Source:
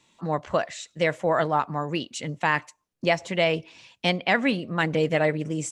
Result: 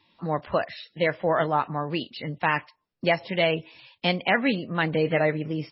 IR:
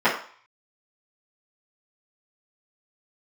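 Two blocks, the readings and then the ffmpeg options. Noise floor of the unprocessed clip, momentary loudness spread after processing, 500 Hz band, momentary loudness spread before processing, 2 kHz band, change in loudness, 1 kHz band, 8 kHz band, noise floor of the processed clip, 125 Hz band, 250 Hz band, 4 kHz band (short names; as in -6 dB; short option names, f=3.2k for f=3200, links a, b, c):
-76 dBFS, 8 LU, -0.5 dB, 8 LU, -0.5 dB, -0.5 dB, -0.5 dB, under -40 dB, -76 dBFS, -0.5 dB, -0.5 dB, -0.5 dB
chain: -ar 16000 -c:a libmp3lame -b:a 16k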